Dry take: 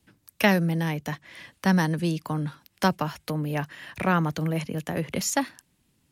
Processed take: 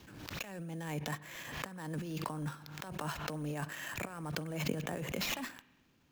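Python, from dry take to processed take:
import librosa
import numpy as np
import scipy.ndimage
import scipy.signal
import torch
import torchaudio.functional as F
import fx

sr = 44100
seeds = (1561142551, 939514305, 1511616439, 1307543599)

y = fx.bass_treble(x, sr, bass_db=-5, treble_db=-6)
y = fx.notch(y, sr, hz=2000.0, q=14.0)
y = fx.sample_hold(y, sr, seeds[0], rate_hz=9400.0, jitter_pct=0)
y = fx.over_compress(y, sr, threshold_db=-35.0, ratio=-1.0)
y = fx.rev_spring(y, sr, rt60_s=1.2, pass_ms=(40,), chirp_ms=30, drr_db=19.0)
y = fx.pre_swell(y, sr, db_per_s=46.0)
y = y * librosa.db_to_amplitude(-6.0)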